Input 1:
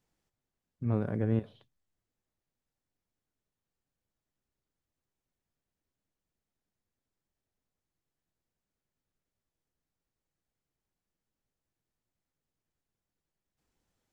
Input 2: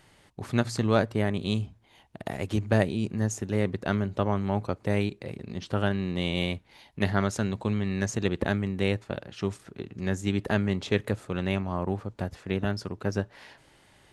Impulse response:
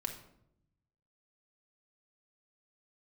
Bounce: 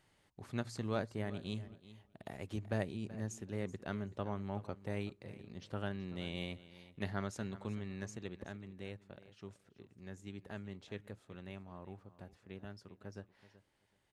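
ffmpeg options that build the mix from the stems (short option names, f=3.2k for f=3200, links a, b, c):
-filter_complex "[0:a]acompressor=threshold=-29dB:ratio=6,adelay=350,volume=-17dB[a];[1:a]volume=-13.5dB,afade=t=out:st=7.75:d=0.7:silence=0.446684,asplit=3[b][c][d];[c]volume=-16.5dB[e];[d]apad=whole_len=638445[f];[a][f]sidechaincompress=threshold=-43dB:ratio=8:attack=16:release=493[g];[e]aecho=0:1:379|758|1137:1|0.17|0.0289[h];[g][b][h]amix=inputs=3:normalize=0"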